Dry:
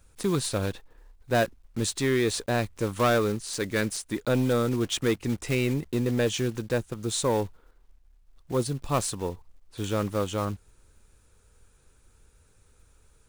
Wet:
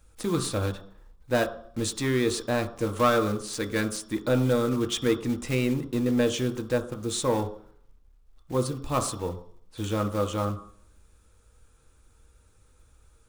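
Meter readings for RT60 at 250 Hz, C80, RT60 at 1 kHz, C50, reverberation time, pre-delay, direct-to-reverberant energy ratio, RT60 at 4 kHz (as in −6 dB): 0.60 s, 15.0 dB, 0.55 s, 11.5 dB, 0.60 s, 3 ms, 4.5 dB, 0.65 s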